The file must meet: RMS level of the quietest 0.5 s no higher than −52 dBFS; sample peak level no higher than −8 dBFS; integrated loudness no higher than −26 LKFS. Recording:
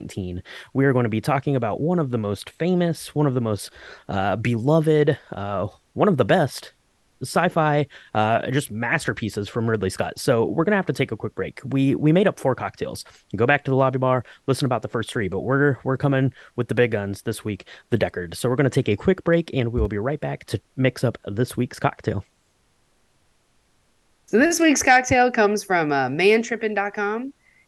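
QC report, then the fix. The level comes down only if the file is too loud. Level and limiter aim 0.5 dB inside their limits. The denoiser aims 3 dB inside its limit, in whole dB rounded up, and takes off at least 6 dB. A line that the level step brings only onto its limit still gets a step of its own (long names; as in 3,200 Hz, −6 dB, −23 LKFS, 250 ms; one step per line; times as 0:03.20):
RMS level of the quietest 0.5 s −64 dBFS: in spec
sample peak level −3.5 dBFS: out of spec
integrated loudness −22.0 LKFS: out of spec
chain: level −4.5 dB
brickwall limiter −8.5 dBFS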